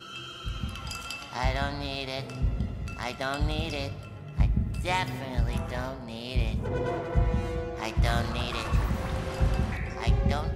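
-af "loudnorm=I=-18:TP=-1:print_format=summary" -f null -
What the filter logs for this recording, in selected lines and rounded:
Input Integrated:    -30.3 LUFS
Input True Peak:     -11.5 dBTP
Input LRA:             3.0 LU
Input Threshold:     -40.4 LUFS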